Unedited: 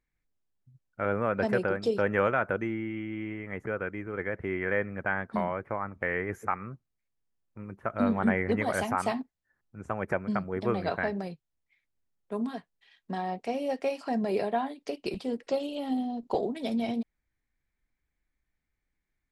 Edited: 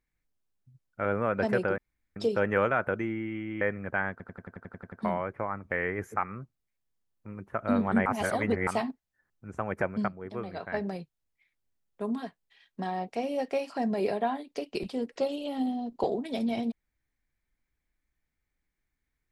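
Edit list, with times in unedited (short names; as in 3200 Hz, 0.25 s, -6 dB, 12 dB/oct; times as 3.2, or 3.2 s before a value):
1.78 insert room tone 0.38 s
3.23–4.73 cut
5.23 stutter 0.09 s, 10 plays
8.37–8.98 reverse
10.39–11.05 gain -8 dB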